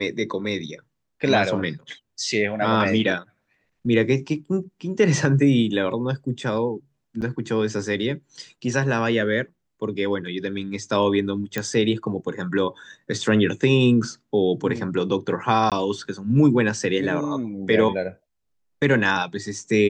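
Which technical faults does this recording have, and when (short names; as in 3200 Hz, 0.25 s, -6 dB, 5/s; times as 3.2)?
7.21–7.22 gap 9.5 ms
11.58 pop -10 dBFS
15.7–15.72 gap 17 ms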